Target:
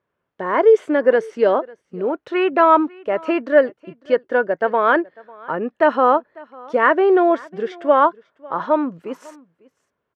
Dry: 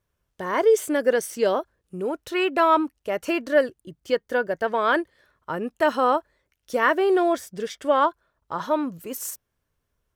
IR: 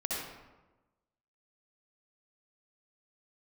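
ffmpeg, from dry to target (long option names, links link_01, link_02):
-af "highpass=210,lowpass=2000,aecho=1:1:548:0.0668,volume=6dB"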